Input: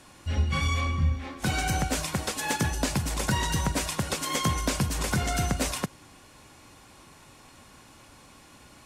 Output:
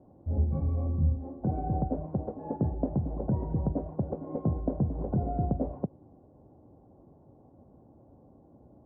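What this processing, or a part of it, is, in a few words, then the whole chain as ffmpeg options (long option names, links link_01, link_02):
under water: -af "highpass=59,lowpass=frequency=580:width=0.5412,lowpass=frequency=580:width=1.3066,equalizer=frequency=750:width_type=o:width=0.56:gain=6"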